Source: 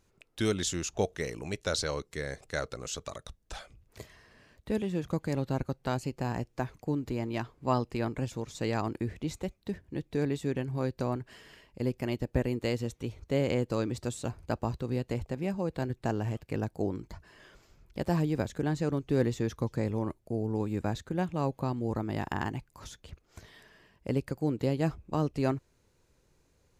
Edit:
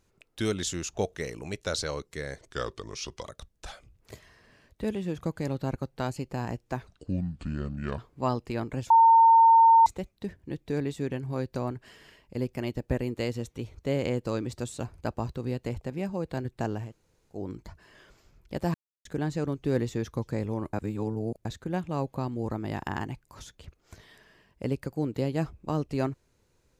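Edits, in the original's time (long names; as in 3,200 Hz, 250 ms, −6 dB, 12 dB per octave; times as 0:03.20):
0:02.39–0:03.12: play speed 85%
0:06.74–0:07.43: play speed 62%
0:08.35–0:09.31: beep over 910 Hz −13.5 dBFS
0:16.30–0:16.84: fill with room tone, crossfade 0.24 s
0:18.19–0:18.50: silence
0:20.18–0:20.90: reverse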